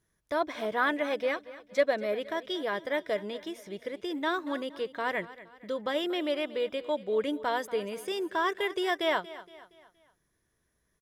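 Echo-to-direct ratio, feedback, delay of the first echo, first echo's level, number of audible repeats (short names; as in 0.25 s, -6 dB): -16.0 dB, 44%, 0.234 s, -17.0 dB, 3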